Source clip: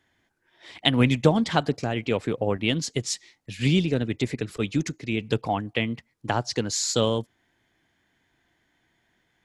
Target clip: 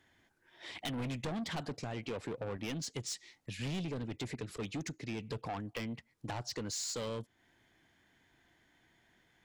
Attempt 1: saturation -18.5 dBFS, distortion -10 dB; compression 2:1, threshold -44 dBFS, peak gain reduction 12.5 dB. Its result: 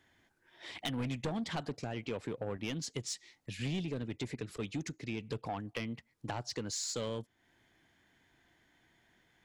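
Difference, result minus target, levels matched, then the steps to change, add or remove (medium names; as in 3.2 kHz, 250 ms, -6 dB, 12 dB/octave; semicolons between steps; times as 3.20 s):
saturation: distortion -5 dB
change: saturation -25.5 dBFS, distortion -5 dB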